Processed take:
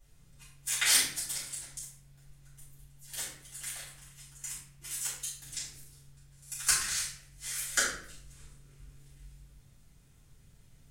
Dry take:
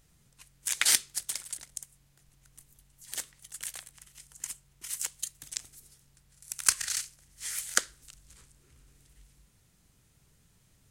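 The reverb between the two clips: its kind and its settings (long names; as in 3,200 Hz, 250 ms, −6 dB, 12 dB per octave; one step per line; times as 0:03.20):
rectangular room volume 110 cubic metres, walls mixed, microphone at 3.9 metres
level −12 dB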